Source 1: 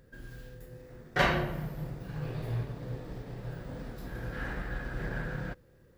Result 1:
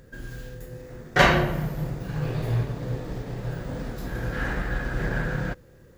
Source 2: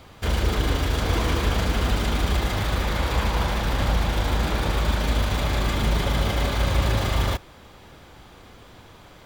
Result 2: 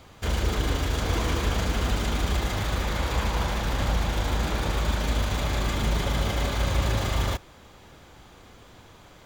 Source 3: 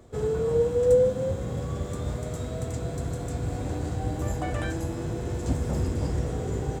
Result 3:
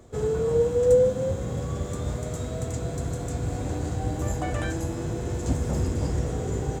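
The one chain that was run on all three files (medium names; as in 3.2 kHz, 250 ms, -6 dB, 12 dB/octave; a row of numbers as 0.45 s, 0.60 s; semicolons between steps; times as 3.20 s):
peaking EQ 6.7 kHz +5 dB 0.33 oct; normalise loudness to -27 LUFS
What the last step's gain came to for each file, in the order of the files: +8.5 dB, -3.0 dB, +1.0 dB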